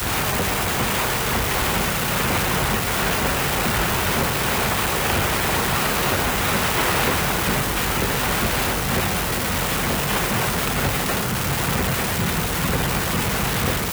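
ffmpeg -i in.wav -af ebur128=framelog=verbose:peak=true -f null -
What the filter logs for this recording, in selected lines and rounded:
Integrated loudness:
  I:         -20.4 LUFS
  Threshold: -30.4 LUFS
Loudness range:
  LRA:         1.5 LU
  Threshold: -40.3 LUFS
  LRA low:   -21.1 LUFS
  LRA high:  -19.6 LUFS
True peak:
  Peak:       -7.3 dBFS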